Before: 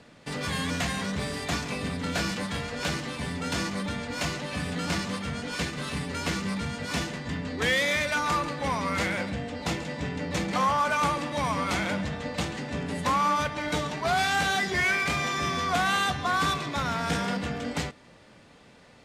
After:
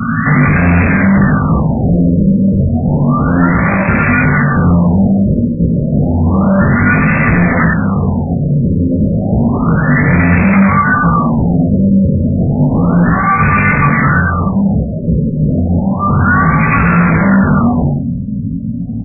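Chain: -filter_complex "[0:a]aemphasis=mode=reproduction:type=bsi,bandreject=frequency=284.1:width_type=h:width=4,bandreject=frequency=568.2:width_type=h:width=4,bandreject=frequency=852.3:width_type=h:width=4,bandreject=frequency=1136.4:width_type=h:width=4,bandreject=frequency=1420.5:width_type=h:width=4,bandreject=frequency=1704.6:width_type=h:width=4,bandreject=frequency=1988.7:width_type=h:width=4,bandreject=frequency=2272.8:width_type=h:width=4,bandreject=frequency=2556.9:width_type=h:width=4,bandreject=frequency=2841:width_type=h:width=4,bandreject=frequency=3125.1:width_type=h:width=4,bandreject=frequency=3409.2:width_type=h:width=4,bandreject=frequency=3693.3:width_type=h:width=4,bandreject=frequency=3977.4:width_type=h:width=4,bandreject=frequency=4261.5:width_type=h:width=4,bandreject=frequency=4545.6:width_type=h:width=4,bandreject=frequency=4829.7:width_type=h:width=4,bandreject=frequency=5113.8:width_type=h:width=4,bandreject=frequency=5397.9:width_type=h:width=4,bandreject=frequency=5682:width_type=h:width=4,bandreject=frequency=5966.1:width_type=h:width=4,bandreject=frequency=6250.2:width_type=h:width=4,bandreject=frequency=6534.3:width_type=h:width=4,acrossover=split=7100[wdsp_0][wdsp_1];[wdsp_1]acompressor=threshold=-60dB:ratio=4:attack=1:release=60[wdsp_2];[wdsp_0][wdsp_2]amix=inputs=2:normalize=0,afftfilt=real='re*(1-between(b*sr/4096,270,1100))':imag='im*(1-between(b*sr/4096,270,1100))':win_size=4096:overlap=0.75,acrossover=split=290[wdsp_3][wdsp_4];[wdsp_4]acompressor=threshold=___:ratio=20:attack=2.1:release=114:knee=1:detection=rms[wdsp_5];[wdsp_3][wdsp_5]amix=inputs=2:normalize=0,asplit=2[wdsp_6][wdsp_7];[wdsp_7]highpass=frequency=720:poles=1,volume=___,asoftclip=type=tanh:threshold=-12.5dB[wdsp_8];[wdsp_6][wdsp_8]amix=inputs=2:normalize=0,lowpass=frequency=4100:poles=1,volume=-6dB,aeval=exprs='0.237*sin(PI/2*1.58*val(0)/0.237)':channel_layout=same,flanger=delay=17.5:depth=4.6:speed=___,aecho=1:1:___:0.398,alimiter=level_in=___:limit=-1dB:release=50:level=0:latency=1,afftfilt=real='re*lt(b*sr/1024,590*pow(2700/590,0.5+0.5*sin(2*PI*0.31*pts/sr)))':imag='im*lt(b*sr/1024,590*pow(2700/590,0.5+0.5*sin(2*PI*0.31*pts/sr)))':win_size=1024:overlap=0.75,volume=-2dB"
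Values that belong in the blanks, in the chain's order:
-40dB, 37dB, 0.53, 91, 14dB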